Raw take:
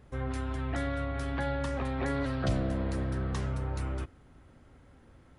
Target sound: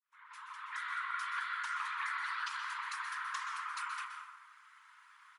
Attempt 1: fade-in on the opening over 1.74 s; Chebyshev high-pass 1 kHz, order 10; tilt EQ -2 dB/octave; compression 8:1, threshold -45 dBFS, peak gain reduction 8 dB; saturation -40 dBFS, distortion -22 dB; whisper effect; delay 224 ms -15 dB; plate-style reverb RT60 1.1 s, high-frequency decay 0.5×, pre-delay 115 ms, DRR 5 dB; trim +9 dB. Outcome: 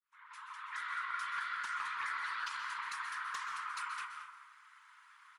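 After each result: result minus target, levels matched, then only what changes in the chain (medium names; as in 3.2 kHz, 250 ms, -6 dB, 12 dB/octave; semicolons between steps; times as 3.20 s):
echo 100 ms late; saturation: distortion +14 dB
change: delay 124 ms -15 dB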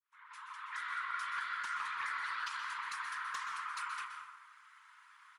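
saturation: distortion +14 dB
change: saturation -31.5 dBFS, distortion -36 dB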